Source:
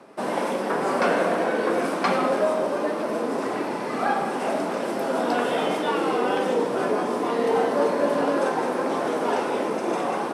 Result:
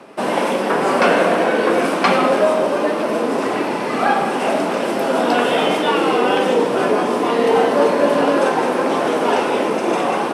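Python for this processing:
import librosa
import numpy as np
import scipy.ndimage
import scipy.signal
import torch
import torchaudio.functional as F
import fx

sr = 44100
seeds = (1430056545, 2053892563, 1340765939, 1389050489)

y = fx.peak_eq(x, sr, hz=2800.0, db=5.0, octaves=0.65)
y = F.gain(torch.from_numpy(y), 7.0).numpy()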